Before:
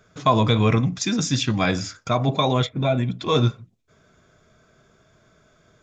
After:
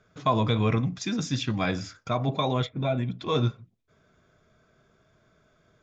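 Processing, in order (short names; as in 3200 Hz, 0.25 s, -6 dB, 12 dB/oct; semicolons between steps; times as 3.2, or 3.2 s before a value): air absorption 71 m; gain -5.5 dB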